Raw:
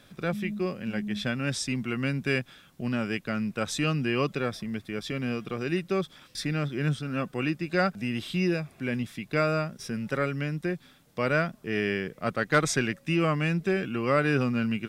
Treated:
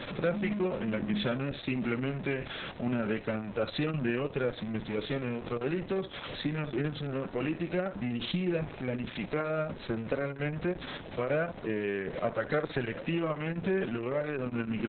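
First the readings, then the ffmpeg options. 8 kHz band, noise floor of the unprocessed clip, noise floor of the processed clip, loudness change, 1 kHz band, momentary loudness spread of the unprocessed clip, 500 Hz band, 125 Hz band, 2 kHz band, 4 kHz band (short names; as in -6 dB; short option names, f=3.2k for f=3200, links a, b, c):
under -40 dB, -58 dBFS, -45 dBFS, -4.0 dB, -6.5 dB, 8 LU, -2.0 dB, -5.0 dB, -7.0 dB, -4.5 dB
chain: -filter_complex "[0:a]aeval=exprs='val(0)+0.5*0.0178*sgn(val(0))':c=same,lowpass=3.8k,equalizer=f=550:t=o:w=0.77:g=7,acompressor=threshold=-26dB:ratio=4,asplit=2[a][b];[b]aecho=0:1:63|126|189:0.224|0.0604|0.0163[c];[a][c]amix=inputs=2:normalize=0" -ar 48000 -c:a libopus -b:a 6k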